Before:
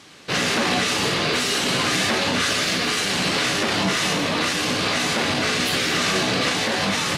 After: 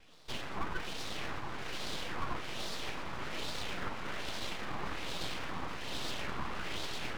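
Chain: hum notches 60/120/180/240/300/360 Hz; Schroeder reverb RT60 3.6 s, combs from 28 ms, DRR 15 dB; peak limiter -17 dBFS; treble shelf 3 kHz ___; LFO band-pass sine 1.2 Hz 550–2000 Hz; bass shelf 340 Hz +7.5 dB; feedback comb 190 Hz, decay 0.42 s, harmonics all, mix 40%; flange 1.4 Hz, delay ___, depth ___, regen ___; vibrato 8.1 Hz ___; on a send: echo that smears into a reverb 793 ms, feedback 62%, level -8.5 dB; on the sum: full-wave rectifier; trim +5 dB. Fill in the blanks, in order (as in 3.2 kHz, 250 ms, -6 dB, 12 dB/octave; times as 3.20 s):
-4.5 dB, 1.9 ms, 6.9 ms, +33%, 74 cents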